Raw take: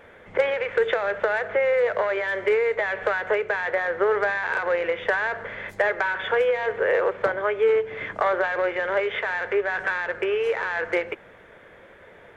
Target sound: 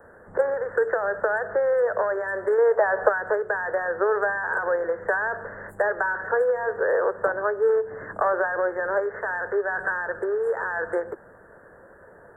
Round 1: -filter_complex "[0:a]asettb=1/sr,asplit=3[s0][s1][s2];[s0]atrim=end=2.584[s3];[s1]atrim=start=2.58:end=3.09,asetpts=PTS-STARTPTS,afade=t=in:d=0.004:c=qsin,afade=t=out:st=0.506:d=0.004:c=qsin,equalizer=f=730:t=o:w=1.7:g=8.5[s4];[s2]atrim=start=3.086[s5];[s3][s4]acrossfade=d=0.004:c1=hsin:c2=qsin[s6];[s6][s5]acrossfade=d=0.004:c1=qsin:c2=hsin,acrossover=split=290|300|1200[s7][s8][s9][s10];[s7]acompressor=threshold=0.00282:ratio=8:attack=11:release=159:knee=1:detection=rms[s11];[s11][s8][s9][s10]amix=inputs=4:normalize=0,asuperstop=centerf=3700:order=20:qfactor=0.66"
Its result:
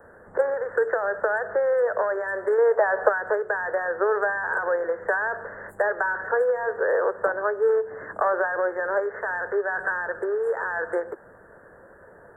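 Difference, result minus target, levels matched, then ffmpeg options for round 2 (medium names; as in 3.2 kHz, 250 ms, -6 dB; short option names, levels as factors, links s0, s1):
compression: peak gain reduction +6.5 dB
-filter_complex "[0:a]asettb=1/sr,asplit=3[s0][s1][s2];[s0]atrim=end=2.584[s3];[s1]atrim=start=2.58:end=3.09,asetpts=PTS-STARTPTS,afade=t=in:d=0.004:c=qsin,afade=t=out:st=0.506:d=0.004:c=qsin,equalizer=f=730:t=o:w=1.7:g=8.5[s4];[s2]atrim=start=3.086[s5];[s3][s4]acrossfade=d=0.004:c1=hsin:c2=qsin[s6];[s6][s5]acrossfade=d=0.004:c1=qsin:c2=hsin,acrossover=split=290|300|1200[s7][s8][s9][s10];[s7]acompressor=threshold=0.00668:ratio=8:attack=11:release=159:knee=1:detection=rms[s11];[s11][s8][s9][s10]amix=inputs=4:normalize=0,asuperstop=centerf=3700:order=20:qfactor=0.66"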